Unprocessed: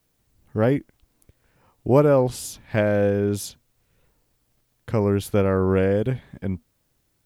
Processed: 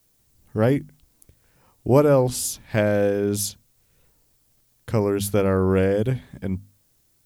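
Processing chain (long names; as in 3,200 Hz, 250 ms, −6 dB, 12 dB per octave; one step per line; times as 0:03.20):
bass and treble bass +2 dB, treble +8 dB
mains-hum notches 50/100/150/200/250 Hz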